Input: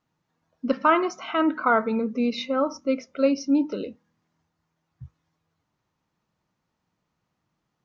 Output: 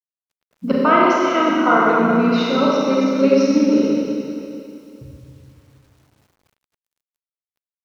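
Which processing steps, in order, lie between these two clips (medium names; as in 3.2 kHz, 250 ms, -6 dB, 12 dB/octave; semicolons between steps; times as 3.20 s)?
Schroeder reverb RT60 2.7 s, combs from 30 ms, DRR -5.5 dB; word length cut 10-bit, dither none; harmony voices -5 st -9 dB; trim +1.5 dB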